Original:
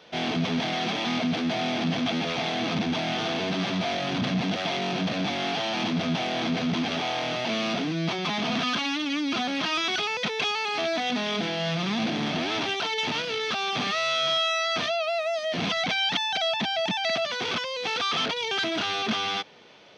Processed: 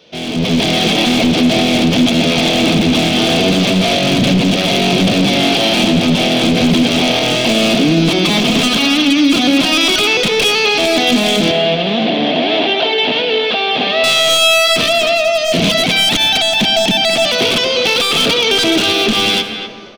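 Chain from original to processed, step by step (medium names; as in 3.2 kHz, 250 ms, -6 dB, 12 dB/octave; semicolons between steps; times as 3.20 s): one-sided wavefolder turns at -23 dBFS; high-order bell 1.2 kHz -8.5 dB; level rider gain up to 11 dB; 11.51–14.04 s: cabinet simulation 290–3500 Hz, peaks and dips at 360 Hz -4 dB, 700 Hz +6 dB, 1.3 kHz -7 dB, 2.4 kHz -4 dB; speakerphone echo 250 ms, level -8 dB; reverberation RT60 2.1 s, pre-delay 47 ms, DRR 9.5 dB; peak limiter -10 dBFS, peak gain reduction 6.5 dB; trim +6.5 dB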